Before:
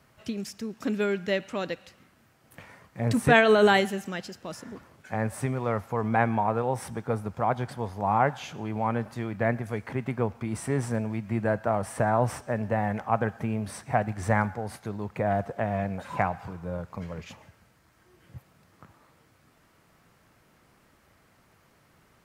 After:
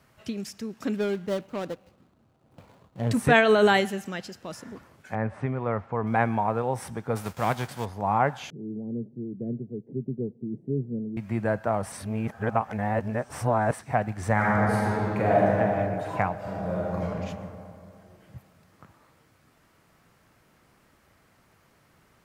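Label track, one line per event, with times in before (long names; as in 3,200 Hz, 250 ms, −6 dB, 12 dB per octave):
0.960000	3.110000	running median over 25 samples
5.150000	6.070000	low-pass filter 2,300 Hz
7.150000	7.840000	spectral envelope flattened exponent 0.6
8.500000	11.170000	elliptic band-pass filter 130–420 Hz, stop band 50 dB
11.920000	13.790000	reverse
14.330000	15.510000	thrown reverb, RT60 2.9 s, DRR −6 dB
16.380000	17.040000	thrown reverb, RT60 2.5 s, DRR −4.5 dB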